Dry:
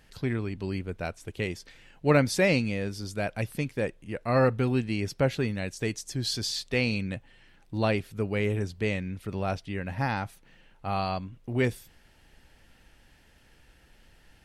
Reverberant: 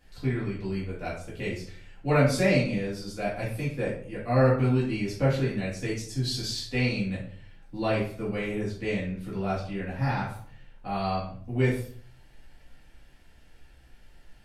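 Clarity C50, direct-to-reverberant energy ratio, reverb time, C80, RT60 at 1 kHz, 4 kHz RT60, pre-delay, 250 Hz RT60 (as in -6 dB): 4.5 dB, -8.5 dB, 0.55 s, 9.0 dB, 0.50 s, 0.35 s, 4 ms, 0.60 s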